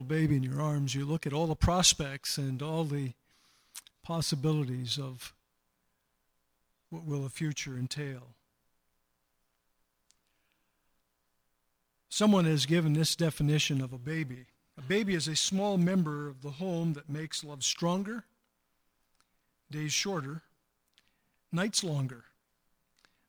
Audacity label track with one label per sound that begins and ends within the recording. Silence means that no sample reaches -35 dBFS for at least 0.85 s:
6.930000	8.150000	sound
12.120000	18.190000	sound
19.730000	20.370000	sound
21.530000	22.130000	sound